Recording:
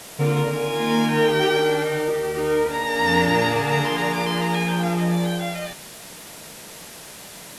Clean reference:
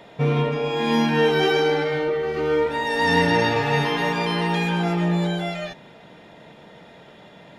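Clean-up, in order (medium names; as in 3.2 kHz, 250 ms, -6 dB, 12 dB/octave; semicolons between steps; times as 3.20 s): de-click; noise print and reduce 6 dB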